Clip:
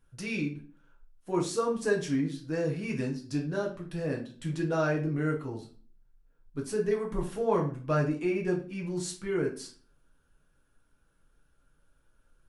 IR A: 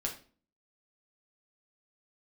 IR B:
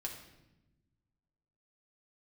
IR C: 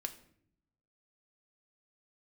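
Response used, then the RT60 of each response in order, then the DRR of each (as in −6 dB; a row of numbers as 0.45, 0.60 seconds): A; 0.40, 1.0, 0.65 seconds; −1.0, −0.5, 5.5 decibels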